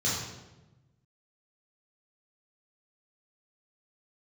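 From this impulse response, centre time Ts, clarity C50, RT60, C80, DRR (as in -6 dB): 69 ms, 0.5 dB, 1.1 s, 3.5 dB, -7.5 dB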